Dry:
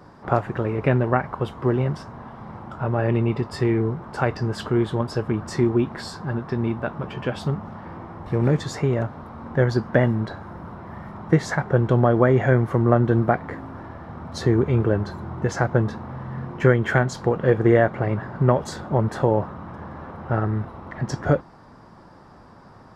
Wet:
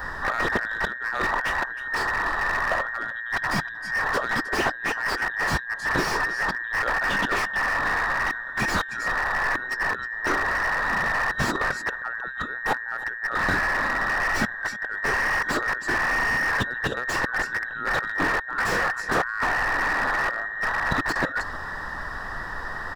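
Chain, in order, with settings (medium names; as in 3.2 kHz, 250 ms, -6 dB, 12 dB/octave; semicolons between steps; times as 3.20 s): every band turned upside down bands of 2 kHz; peak limiter -14 dBFS, peak gain reduction 11.5 dB; added noise brown -52 dBFS; compressor with a negative ratio -31 dBFS, ratio -0.5; delay 312 ms -19 dB; slew-rate limiter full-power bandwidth 51 Hz; trim +8.5 dB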